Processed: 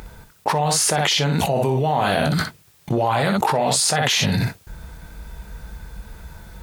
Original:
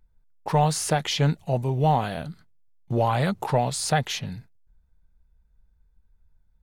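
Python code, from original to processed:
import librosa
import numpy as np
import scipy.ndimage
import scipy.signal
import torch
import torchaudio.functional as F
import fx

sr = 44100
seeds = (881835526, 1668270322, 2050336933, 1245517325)

y = scipy.signal.sosfilt(scipy.signal.butter(2, 47.0, 'highpass', fs=sr, output='sos'), x)
y = fx.low_shelf(y, sr, hz=210.0, db=-10.5)
y = fx.rider(y, sr, range_db=10, speed_s=0.5)
y = fx.room_early_taps(y, sr, ms=(20, 61), db=(-10.5, -8.0))
y = fx.env_flatten(y, sr, amount_pct=100)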